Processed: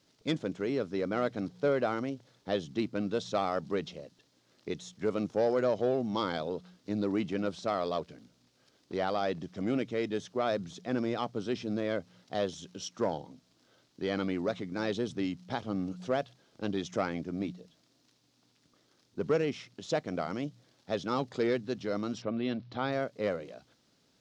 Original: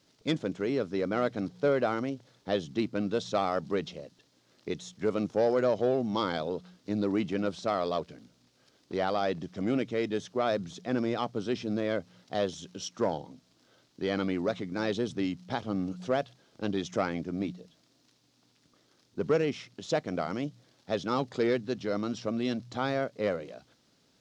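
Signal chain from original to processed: 22.21–22.91 s: low-pass 3.3 kHz -> 5 kHz 24 dB/octave; trim -2 dB

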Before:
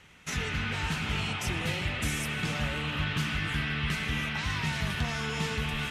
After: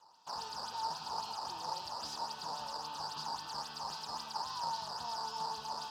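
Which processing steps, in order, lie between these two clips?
decimation with a swept rate 8×, swing 160% 3.7 Hz; two resonant band-passes 2.1 kHz, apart 2.4 oct; on a send: reverberation RT60 0.45 s, pre-delay 43 ms, DRR 13 dB; on the sum: trim +5 dB

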